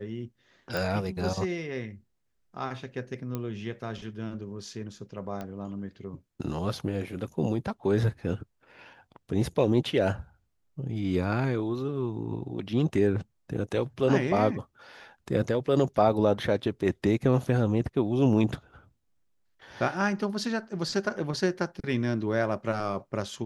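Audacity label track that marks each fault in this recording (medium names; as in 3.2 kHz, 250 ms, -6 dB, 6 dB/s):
0.770000	0.770000	pop
3.350000	3.350000	pop -19 dBFS
5.410000	5.410000	pop -23 dBFS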